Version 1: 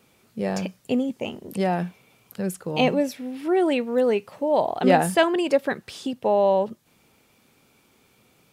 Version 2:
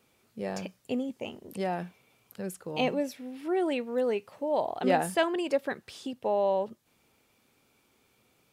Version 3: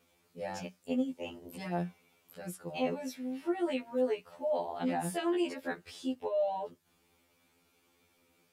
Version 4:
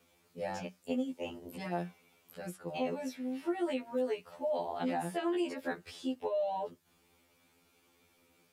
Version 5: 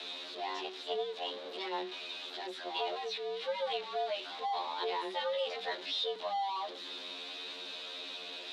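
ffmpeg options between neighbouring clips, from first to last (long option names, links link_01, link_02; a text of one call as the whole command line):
ffmpeg -i in.wav -af "equalizer=frequency=170:width_type=o:width=0.78:gain=-4,volume=-7dB" out.wav
ffmpeg -i in.wav -af "alimiter=limit=-23dB:level=0:latency=1:release=41,afftfilt=real='re*2*eq(mod(b,4),0)':imag='im*2*eq(mod(b,4),0)':win_size=2048:overlap=0.75" out.wav
ffmpeg -i in.wav -filter_complex "[0:a]acrossover=split=230|1800|3600[link_01][link_02][link_03][link_04];[link_01]acompressor=threshold=-47dB:ratio=4[link_05];[link_02]acompressor=threshold=-32dB:ratio=4[link_06];[link_03]acompressor=threshold=-52dB:ratio=4[link_07];[link_04]acompressor=threshold=-54dB:ratio=4[link_08];[link_05][link_06][link_07][link_08]amix=inputs=4:normalize=0,volume=1.5dB" out.wav
ffmpeg -i in.wav -af "aeval=exprs='val(0)+0.5*0.0112*sgn(val(0))':channel_layout=same,afreqshift=190,lowpass=frequency=3800:width_type=q:width=7.4,volume=-4dB" out.wav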